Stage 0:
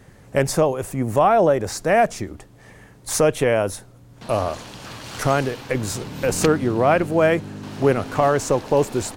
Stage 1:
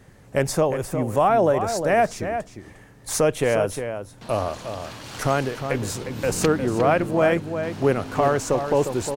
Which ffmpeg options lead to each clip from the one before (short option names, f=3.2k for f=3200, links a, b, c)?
-filter_complex "[0:a]asplit=2[a][b];[b]adelay=355.7,volume=-8dB,highshelf=f=4k:g=-8[c];[a][c]amix=inputs=2:normalize=0,volume=-2.5dB"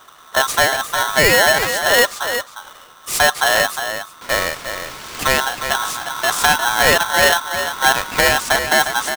-af "aeval=exprs='val(0)*sgn(sin(2*PI*1200*n/s))':c=same,volume=5dB"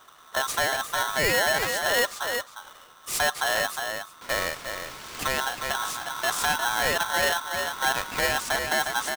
-af "alimiter=limit=-7.5dB:level=0:latency=1:release=64,volume=-7.5dB"